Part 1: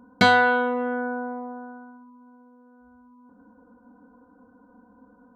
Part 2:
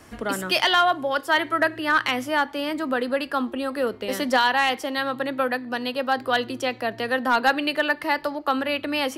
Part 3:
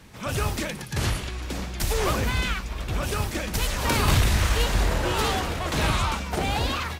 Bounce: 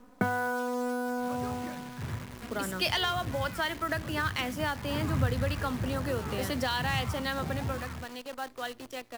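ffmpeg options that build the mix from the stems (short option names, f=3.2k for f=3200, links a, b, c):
-filter_complex "[0:a]lowpass=f=1.5k:w=0.5412,lowpass=f=1.5k:w=1.3066,volume=1dB[a];[1:a]adelay=2300,volume=-6dB,afade=t=out:st=7.34:d=0.43:silence=0.375837[b];[2:a]lowpass=f=2.1k:w=0.5412,lowpass=f=2.1k:w=1.3066,asubboost=boost=4.5:cutoff=220,adelay=1050,volume=-12.5dB[c];[a][b][c]amix=inputs=3:normalize=0,highpass=f=95:w=0.5412,highpass=f=95:w=1.3066,acrossover=split=130|3000[d][e][f];[e]acompressor=threshold=-28dB:ratio=10[g];[d][g][f]amix=inputs=3:normalize=0,acrusher=bits=8:dc=4:mix=0:aa=0.000001"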